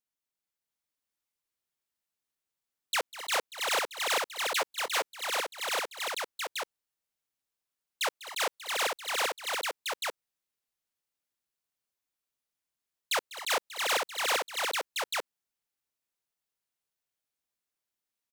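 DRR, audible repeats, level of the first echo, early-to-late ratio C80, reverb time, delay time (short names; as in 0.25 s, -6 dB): none, 5, -16.5 dB, none, none, 0.198 s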